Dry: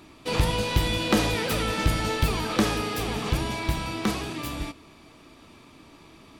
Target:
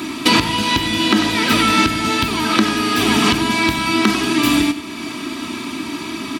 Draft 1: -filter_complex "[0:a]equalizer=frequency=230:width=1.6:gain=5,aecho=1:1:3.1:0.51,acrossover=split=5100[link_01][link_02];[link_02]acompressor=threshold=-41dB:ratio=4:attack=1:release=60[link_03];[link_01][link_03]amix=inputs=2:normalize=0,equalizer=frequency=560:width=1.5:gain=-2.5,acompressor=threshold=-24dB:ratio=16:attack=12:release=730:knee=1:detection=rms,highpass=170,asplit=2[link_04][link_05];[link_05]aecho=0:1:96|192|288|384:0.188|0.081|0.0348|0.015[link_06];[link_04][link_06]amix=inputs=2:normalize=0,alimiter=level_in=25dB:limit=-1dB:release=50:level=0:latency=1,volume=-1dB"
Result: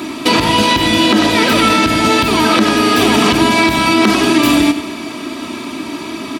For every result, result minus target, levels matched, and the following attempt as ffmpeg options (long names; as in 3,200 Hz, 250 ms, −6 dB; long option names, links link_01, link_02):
downward compressor: peak gain reduction −4.5 dB; 500 Hz band +3.0 dB
-filter_complex "[0:a]equalizer=frequency=230:width=1.6:gain=5,aecho=1:1:3.1:0.51,acrossover=split=5100[link_01][link_02];[link_02]acompressor=threshold=-41dB:ratio=4:attack=1:release=60[link_03];[link_01][link_03]amix=inputs=2:normalize=0,equalizer=frequency=560:width=1.5:gain=-2.5,acompressor=threshold=-30.5dB:ratio=16:attack=12:release=730:knee=1:detection=rms,highpass=170,asplit=2[link_04][link_05];[link_05]aecho=0:1:96|192|288|384:0.188|0.081|0.0348|0.015[link_06];[link_04][link_06]amix=inputs=2:normalize=0,alimiter=level_in=25dB:limit=-1dB:release=50:level=0:latency=1,volume=-1dB"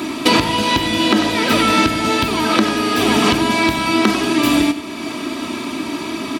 500 Hz band +4.0 dB
-filter_complex "[0:a]equalizer=frequency=230:width=1.6:gain=5,aecho=1:1:3.1:0.51,acrossover=split=5100[link_01][link_02];[link_02]acompressor=threshold=-41dB:ratio=4:attack=1:release=60[link_03];[link_01][link_03]amix=inputs=2:normalize=0,equalizer=frequency=560:width=1.5:gain=-12,acompressor=threshold=-30.5dB:ratio=16:attack=12:release=730:knee=1:detection=rms,highpass=170,asplit=2[link_04][link_05];[link_05]aecho=0:1:96|192|288|384:0.188|0.081|0.0348|0.015[link_06];[link_04][link_06]amix=inputs=2:normalize=0,alimiter=level_in=25dB:limit=-1dB:release=50:level=0:latency=1,volume=-1dB"